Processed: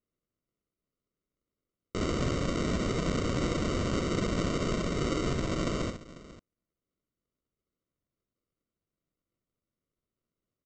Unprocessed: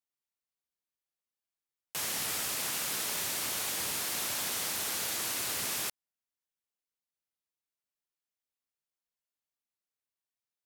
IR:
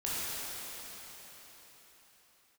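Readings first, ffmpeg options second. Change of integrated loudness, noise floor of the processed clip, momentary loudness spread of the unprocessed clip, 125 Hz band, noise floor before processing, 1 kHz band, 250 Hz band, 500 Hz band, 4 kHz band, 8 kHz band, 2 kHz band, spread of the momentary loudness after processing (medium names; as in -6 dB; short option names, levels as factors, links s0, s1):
+0.5 dB, under -85 dBFS, 2 LU, +21.0 dB, under -85 dBFS, +4.0 dB, +19.0 dB, +14.0 dB, -4.5 dB, -12.0 dB, -1.0 dB, 6 LU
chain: -af "aresample=16000,acrusher=samples=19:mix=1:aa=0.000001,aresample=44100,aecho=1:1:66|494:0.473|0.141,volume=2.11"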